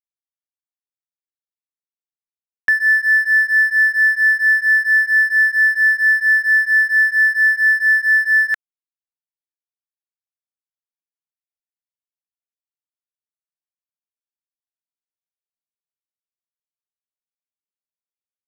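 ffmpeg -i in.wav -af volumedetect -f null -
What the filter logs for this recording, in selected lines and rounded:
mean_volume: -19.6 dB
max_volume: -8.7 dB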